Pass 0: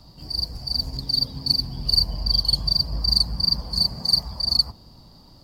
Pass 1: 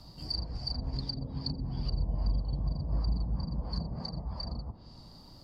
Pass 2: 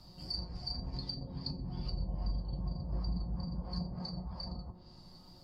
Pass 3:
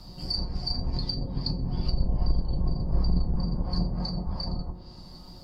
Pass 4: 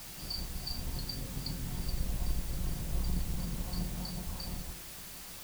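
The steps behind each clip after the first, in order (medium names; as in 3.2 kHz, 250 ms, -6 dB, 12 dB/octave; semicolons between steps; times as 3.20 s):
low-pass that closes with the level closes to 660 Hz, closed at -18.5 dBFS; trim -2.5 dB
feedback comb 180 Hz, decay 0.21 s, harmonics all, mix 80%; trim +5 dB
octave divider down 2 oct, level +1 dB; trim +8.5 dB
added noise white -38 dBFS; trim -9 dB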